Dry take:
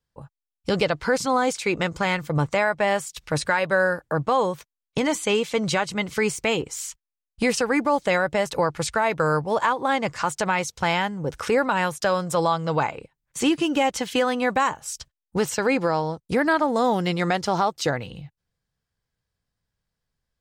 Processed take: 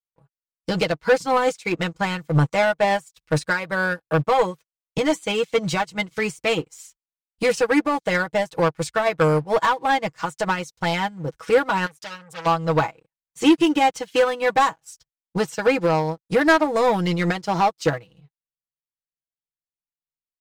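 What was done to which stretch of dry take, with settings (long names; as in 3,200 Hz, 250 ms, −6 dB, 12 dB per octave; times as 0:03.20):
0:11.86–0:12.46: saturating transformer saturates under 3,700 Hz
whole clip: comb filter 6.2 ms, depth 66%; leveller curve on the samples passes 2; expander for the loud parts 2.5 to 1, over −28 dBFS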